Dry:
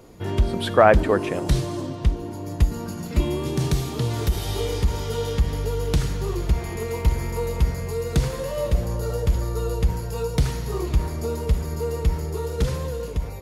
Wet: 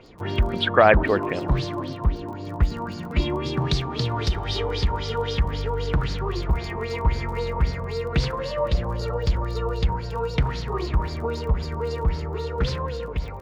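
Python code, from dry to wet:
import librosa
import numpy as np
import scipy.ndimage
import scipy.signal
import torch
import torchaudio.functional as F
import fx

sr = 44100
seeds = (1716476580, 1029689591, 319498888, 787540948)

y = fx.filter_lfo_lowpass(x, sr, shape='sine', hz=3.8, low_hz=960.0, high_hz=4900.0, q=4.5)
y = fx.dmg_crackle(y, sr, seeds[0], per_s=28.0, level_db=-34.0)
y = y * 10.0 ** (-1.5 / 20.0)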